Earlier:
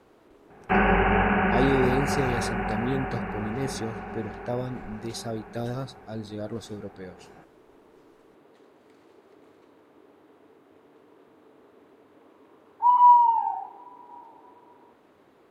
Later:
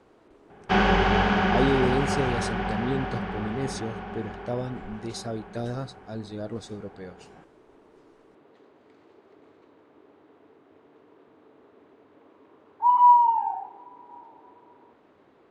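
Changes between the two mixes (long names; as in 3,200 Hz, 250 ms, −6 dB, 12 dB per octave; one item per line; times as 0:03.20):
speech: add parametric band 9,800 Hz +11.5 dB 1.1 octaves
first sound: remove Chebyshev low-pass filter 2,800 Hz, order 8
master: add high-frequency loss of the air 93 metres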